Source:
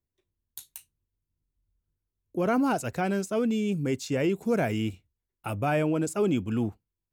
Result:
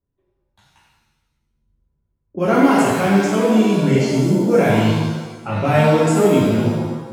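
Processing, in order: level-controlled noise filter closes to 1.1 kHz, open at -22 dBFS; spectral replace 3.97–4.36 s, 370–4100 Hz both; pitch-shifted reverb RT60 1.1 s, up +7 st, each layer -8 dB, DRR -7 dB; trim +3.5 dB

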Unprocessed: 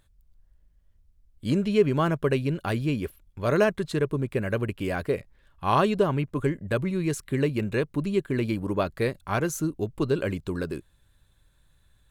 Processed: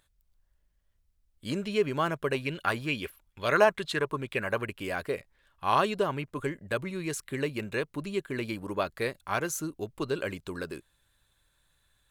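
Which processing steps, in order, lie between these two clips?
bass shelf 410 Hz -11.5 dB; 2.34–4.67 s: sweeping bell 2.3 Hz 810–3600 Hz +11 dB

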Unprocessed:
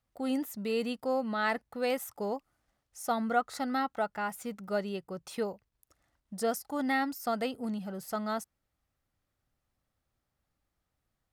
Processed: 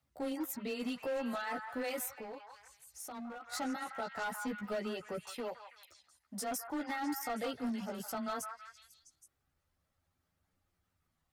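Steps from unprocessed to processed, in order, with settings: frequency shift +13 Hz; in parallel at +3 dB: level held to a coarse grid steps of 22 dB; on the sum: peak limiter -24.5 dBFS, peak gain reduction 10 dB; reverb removal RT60 0.58 s; chorus voices 2, 0.19 Hz, delay 14 ms, depth 3 ms; hard clipper -32.5 dBFS, distortion -13 dB; 5.34–6.51 s: bass shelf 230 Hz -9.5 dB; repeats whose band climbs or falls 164 ms, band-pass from 1.2 kHz, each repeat 0.7 oct, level -3.5 dB; 2.11–3.52 s: compression 2.5:1, threshold -48 dBFS, peak gain reduction 10 dB

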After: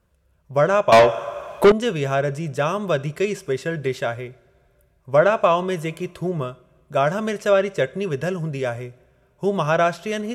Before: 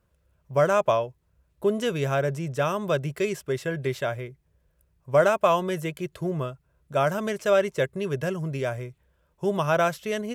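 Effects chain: two-slope reverb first 0.48 s, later 2.6 s, from -19 dB, DRR 15.5 dB; low-pass that closes with the level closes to 2.8 kHz, closed at -12.5 dBFS; 0.92–1.72 s: overdrive pedal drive 30 dB, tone 5 kHz, clips at -6.5 dBFS; trim +3.5 dB

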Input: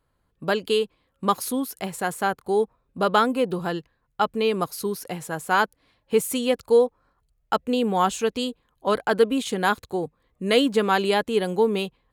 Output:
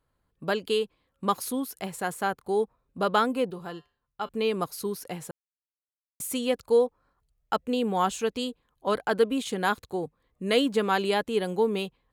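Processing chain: 3.50–4.29 s: feedback comb 80 Hz, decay 0.36 s, harmonics odd, mix 60%; 5.31–6.20 s: mute; trim -4 dB

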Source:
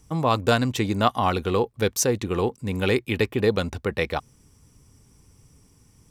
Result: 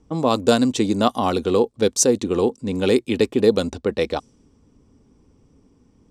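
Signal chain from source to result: level-controlled noise filter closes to 2.2 kHz, open at -18 dBFS; ten-band graphic EQ 125 Hz -6 dB, 250 Hz +9 dB, 500 Hz +5 dB, 2 kHz -5 dB, 4 kHz +4 dB, 8 kHz +9 dB; trim -1 dB

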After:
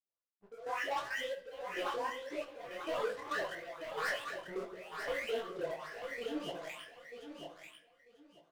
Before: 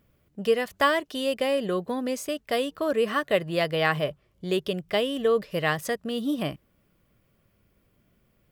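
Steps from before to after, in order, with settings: delay that grows with frequency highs late, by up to 901 ms; low-pass 1.5 kHz 12 dB/octave; reverb removal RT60 1.2 s; high-pass 790 Hz 12 dB/octave; waveshaping leveller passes 5; compression, threshold -24 dBFS, peak gain reduction 4 dB; trance gate "xx....xxx." 136 bpm -12 dB; feedback delay 942 ms, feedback 20%, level -6.5 dB; simulated room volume 140 m³, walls mixed, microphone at 0.33 m; detune thickener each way 58 cents; trim -7 dB

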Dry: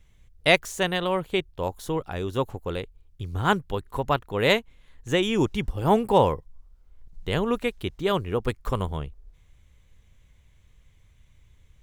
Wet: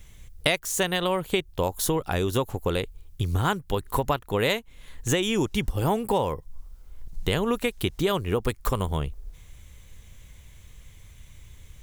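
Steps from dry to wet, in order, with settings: treble shelf 6.1 kHz +11.5 dB; compression 8:1, threshold -30 dBFS, peak gain reduction 18 dB; trim +9 dB

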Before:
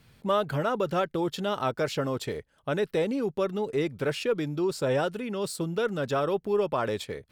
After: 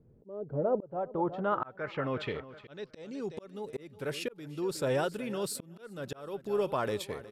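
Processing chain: low-pass sweep 430 Hz -> 12 kHz, 0.43–3.71 s; feedback delay 365 ms, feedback 39%, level -16.5 dB; slow attack 486 ms; trim -3.5 dB

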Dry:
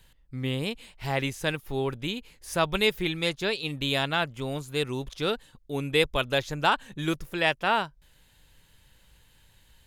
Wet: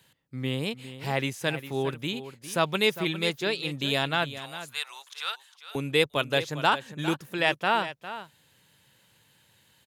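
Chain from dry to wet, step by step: high-pass 110 Hz 24 dB/octave, from 4.38 s 930 Hz, from 5.75 s 110 Hz; delay 404 ms -13 dB

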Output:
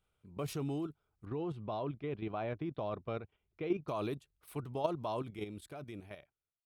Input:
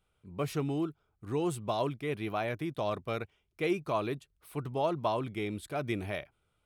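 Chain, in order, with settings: fade out at the end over 1.67 s; dynamic bell 1.9 kHz, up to -6 dB, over -52 dBFS, Q 1.8; level held to a coarse grid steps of 9 dB; 1.25–3.88 s: distance through air 290 m

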